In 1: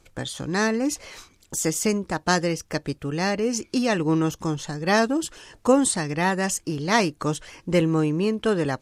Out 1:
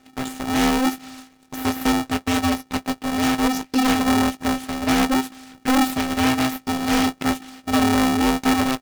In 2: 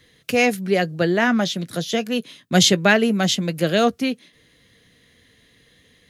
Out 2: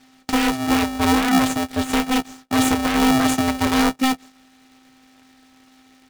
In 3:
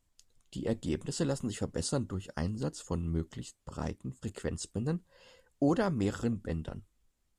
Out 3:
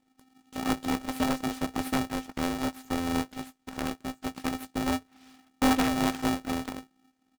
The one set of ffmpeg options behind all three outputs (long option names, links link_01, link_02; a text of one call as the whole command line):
ffmpeg -i in.wav -filter_complex "[0:a]lowpass=5400,alimiter=limit=-13dB:level=0:latency=1:release=41,aeval=exprs='abs(val(0))':channel_layout=same,asplit=2[link_01][link_02];[link_02]adelay=18,volume=-11dB[link_03];[link_01][link_03]amix=inputs=2:normalize=0,aeval=exprs='val(0)*sgn(sin(2*PI*260*n/s))':channel_layout=same,volume=2.5dB" out.wav